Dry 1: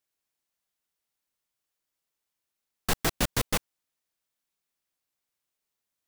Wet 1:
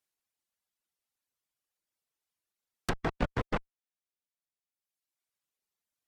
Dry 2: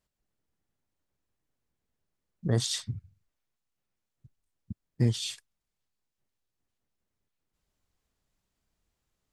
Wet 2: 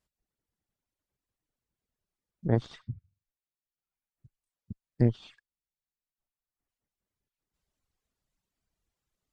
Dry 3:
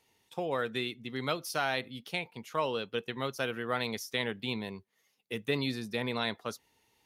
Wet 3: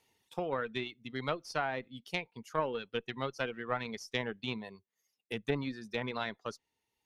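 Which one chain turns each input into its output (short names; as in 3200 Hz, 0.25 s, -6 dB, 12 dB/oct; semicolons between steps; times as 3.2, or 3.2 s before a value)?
reverb removal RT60 1.4 s; added harmonics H 2 -8 dB, 3 -25 dB, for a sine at -12 dBFS; treble ducked by the level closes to 1600 Hz, closed at -28.5 dBFS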